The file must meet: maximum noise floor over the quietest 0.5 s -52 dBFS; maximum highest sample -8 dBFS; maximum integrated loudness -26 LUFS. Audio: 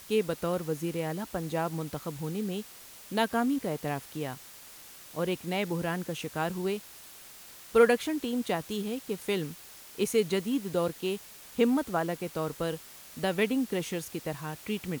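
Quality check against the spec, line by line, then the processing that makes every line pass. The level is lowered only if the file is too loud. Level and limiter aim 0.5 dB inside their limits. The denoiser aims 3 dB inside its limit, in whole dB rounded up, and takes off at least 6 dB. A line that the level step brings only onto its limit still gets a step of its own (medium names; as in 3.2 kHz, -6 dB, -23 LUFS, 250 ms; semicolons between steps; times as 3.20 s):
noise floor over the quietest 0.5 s -49 dBFS: fail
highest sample -9.5 dBFS: pass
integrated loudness -31.0 LUFS: pass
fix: noise reduction 6 dB, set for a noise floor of -49 dBFS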